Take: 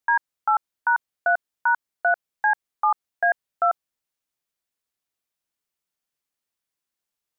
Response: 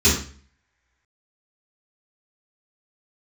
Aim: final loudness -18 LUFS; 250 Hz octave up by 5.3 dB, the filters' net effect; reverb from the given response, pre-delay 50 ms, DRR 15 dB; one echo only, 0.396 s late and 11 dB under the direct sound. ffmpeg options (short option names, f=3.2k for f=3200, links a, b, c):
-filter_complex "[0:a]equalizer=f=250:t=o:g=8,aecho=1:1:396:0.282,asplit=2[a][b];[1:a]atrim=start_sample=2205,adelay=50[c];[b][c]afir=irnorm=-1:irlink=0,volume=-34dB[d];[a][d]amix=inputs=2:normalize=0,volume=6dB"